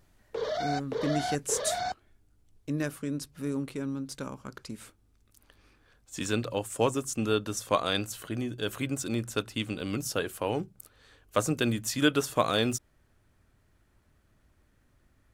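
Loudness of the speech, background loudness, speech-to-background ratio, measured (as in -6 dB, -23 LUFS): -31.0 LUFS, -33.5 LUFS, 2.5 dB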